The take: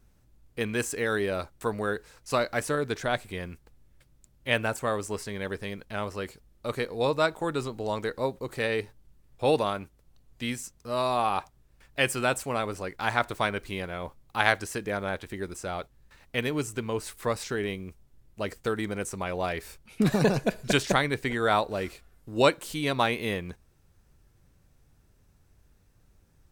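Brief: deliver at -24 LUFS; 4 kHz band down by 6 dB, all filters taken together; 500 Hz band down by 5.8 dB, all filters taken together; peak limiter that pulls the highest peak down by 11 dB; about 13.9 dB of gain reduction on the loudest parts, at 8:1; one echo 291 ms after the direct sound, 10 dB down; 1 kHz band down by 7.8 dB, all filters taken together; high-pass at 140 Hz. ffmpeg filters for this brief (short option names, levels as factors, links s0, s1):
-af "highpass=140,equalizer=f=500:t=o:g=-4.5,equalizer=f=1000:t=o:g=-9,equalizer=f=4000:t=o:g=-7,acompressor=threshold=0.0158:ratio=8,alimiter=level_in=2.11:limit=0.0631:level=0:latency=1,volume=0.473,aecho=1:1:291:0.316,volume=9.44"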